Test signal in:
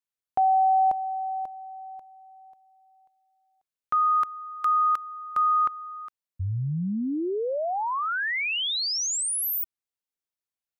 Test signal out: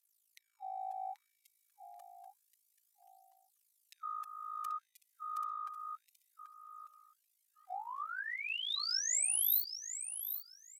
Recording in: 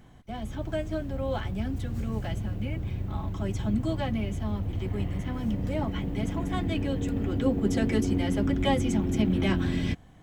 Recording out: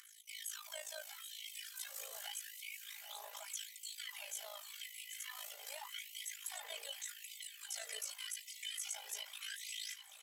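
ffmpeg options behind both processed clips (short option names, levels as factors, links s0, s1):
-filter_complex "[0:a]acompressor=threshold=0.0501:ratio=6:attack=0.48:release=446:knee=6:detection=peak,aderivative,aphaser=in_gain=1:out_gain=1:delay=2.1:decay=0.58:speed=0.3:type=triangular,aecho=1:1:5:0.73,acrossover=split=360[s0][s1];[s1]acompressor=threshold=0.00316:ratio=3:attack=0.11:release=31:knee=2.83:detection=peak[s2];[s0][s2]amix=inputs=2:normalize=0,highshelf=f=5700:g=6.5,aresample=32000,aresample=44100,tremolo=f=54:d=0.788,aecho=1:1:784|1568|2352:0.335|0.067|0.0134,afftfilt=real='re*gte(b*sr/1024,410*pow(2000/410,0.5+0.5*sin(2*PI*0.85*pts/sr)))':imag='im*gte(b*sr/1024,410*pow(2000/410,0.5+0.5*sin(2*PI*0.85*pts/sr)))':win_size=1024:overlap=0.75,volume=3.55"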